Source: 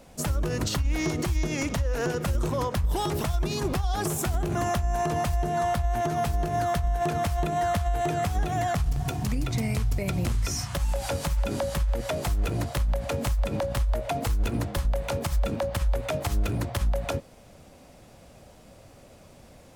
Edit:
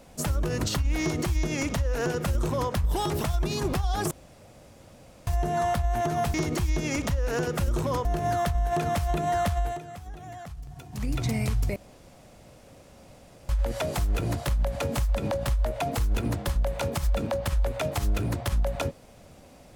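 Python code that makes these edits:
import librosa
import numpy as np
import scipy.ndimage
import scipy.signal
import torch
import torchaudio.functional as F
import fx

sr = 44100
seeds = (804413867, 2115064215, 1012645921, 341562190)

y = fx.edit(x, sr, fx.duplicate(start_s=1.01, length_s=1.71, to_s=6.34),
    fx.room_tone_fill(start_s=4.11, length_s=1.16),
    fx.fade_down_up(start_s=7.84, length_s=1.62, db=-14.5, fade_s=0.25, curve='qsin'),
    fx.room_tone_fill(start_s=10.05, length_s=1.73), tone=tone)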